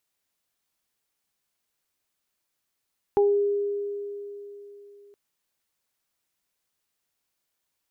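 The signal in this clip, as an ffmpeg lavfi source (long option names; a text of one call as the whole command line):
ffmpeg -f lavfi -i "aevalsrc='0.158*pow(10,-3*t/3.47)*sin(2*PI*406*t)+0.0794*pow(10,-3*t/0.28)*sin(2*PI*812*t)':duration=1.97:sample_rate=44100" out.wav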